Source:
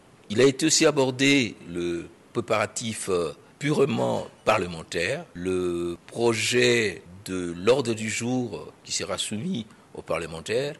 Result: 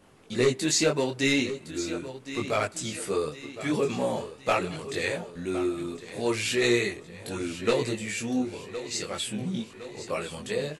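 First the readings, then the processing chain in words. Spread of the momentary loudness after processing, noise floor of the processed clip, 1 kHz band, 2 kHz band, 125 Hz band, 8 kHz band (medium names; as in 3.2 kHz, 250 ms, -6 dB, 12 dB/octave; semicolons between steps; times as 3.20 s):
11 LU, -49 dBFS, -3.0 dB, -3.5 dB, -4.0 dB, -3.5 dB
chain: vibrato 3.7 Hz 11 cents; feedback delay 1062 ms, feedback 52%, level -13.5 dB; detune thickener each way 14 cents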